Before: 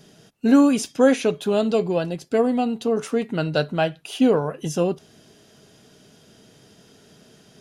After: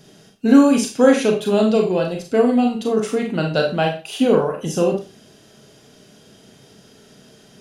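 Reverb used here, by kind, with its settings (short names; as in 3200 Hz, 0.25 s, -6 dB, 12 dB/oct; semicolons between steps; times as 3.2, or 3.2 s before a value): Schroeder reverb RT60 0.31 s, combs from 29 ms, DRR 2 dB; gain +1.5 dB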